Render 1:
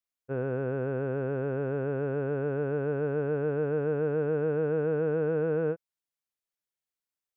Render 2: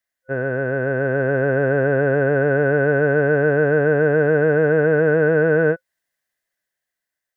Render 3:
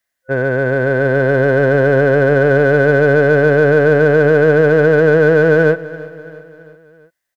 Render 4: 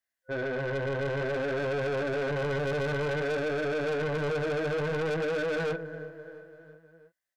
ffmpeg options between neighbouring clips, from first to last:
ffmpeg -i in.wav -af "superequalizer=8b=2:11b=3.98,dynaudnorm=framelen=260:gausssize=9:maxgain=5dB,volume=6dB" out.wav
ffmpeg -i in.wav -filter_complex "[0:a]asplit=2[link_01][link_02];[link_02]volume=20dB,asoftclip=hard,volume=-20dB,volume=-7.5dB[link_03];[link_01][link_03]amix=inputs=2:normalize=0,aecho=1:1:336|672|1008|1344:0.126|0.0667|0.0354|0.0187,volume=4dB" out.wav
ffmpeg -i in.wav -af "flanger=delay=16.5:depth=5.5:speed=0.55,asoftclip=type=tanh:threshold=-19dB,volume=-8.5dB" out.wav

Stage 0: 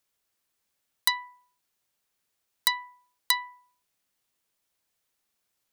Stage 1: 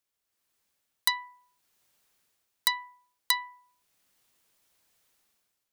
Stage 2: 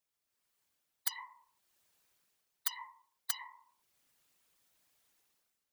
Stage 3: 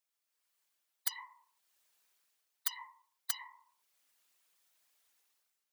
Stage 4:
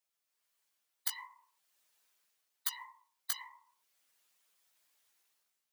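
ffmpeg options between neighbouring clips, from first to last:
ffmpeg -i in.wav -af "dynaudnorm=framelen=140:gausssize=7:maxgain=14dB,volume=-6dB" out.wav
ffmpeg -i in.wav -af "afftfilt=real='re*lt(hypot(re,im),0.126)':imag='im*lt(hypot(re,im),0.126)':win_size=1024:overlap=0.75,afftfilt=real='hypot(re,im)*cos(2*PI*random(0))':imag='hypot(re,im)*sin(2*PI*random(1))':win_size=512:overlap=0.75,volume=2.5dB" out.wav
ffmpeg -i in.wav -af "highpass=frequency=750:poles=1" out.wav
ffmpeg -i in.wav -af "acrusher=bits=7:mode=log:mix=0:aa=0.000001,flanger=delay=8.5:depth=9.8:regen=-4:speed=0.48:shape=sinusoidal,volume=3.5dB" out.wav

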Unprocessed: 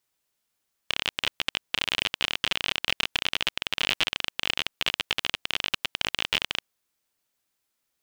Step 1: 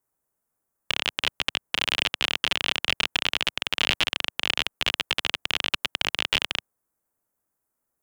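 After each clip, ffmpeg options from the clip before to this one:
ffmpeg -i in.wav -filter_complex "[0:a]highshelf=frequency=10000:gain=-4,acrossover=split=120|1600|7400[link_01][link_02][link_03][link_04];[link_03]acrusher=bits=6:mix=0:aa=0.000001[link_05];[link_01][link_02][link_05][link_04]amix=inputs=4:normalize=0,volume=2.5dB" out.wav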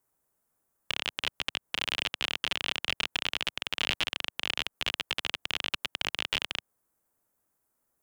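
ffmpeg -i in.wav -af "alimiter=limit=-14.5dB:level=0:latency=1:release=120,volume=2.5dB" out.wav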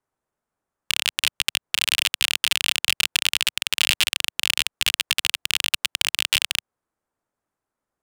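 ffmpeg -i in.wav -af "adynamicsmooth=sensitivity=6.5:basefreq=1900,crystalizer=i=7:c=0,volume=-1dB" out.wav

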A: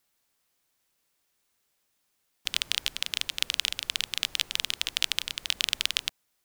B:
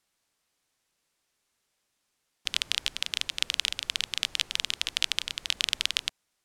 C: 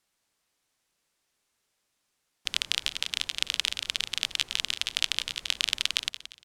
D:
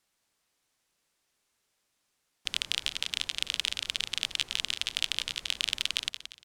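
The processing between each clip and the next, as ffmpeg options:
ffmpeg -i in.wav -af "lowpass=10000" out.wav
ffmpeg -i in.wav -filter_complex "[0:a]asplit=5[link_01][link_02][link_03][link_04][link_05];[link_02]adelay=175,afreqshift=32,volume=-12.5dB[link_06];[link_03]adelay=350,afreqshift=64,volume=-21.6dB[link_07];[link_04]adelay=525,afreqshift=96,volume=-30.7dB[link_08];[link_05]adelay=700,afreqshift=128,volume=-39.9dB[link_09];[link_01][link_06][link_07][link_08][link_09]amix=inputs=5:normalize=0" out.wav
ffmpeg -i in.wav -af "asoftclip=type=tanh:threshold=-8.5dB" out.wav

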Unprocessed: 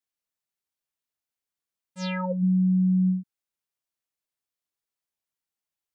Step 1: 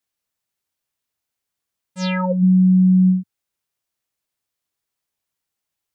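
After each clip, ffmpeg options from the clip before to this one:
ffmpeg -i in.wav -af "equalizer=frequency=96:width=1.5:gain=4.5,volume=7.5dB" out.wav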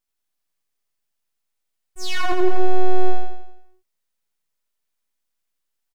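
ffmpeg -i in.wav -af "aeval=exprs='abs(val(0))':channel_layout=same,aecho=1:1:85|170|255|340|425|510|595:0.708|0.361|0.184|0.0939|0.0479|0.0244|0.0125" out.wav

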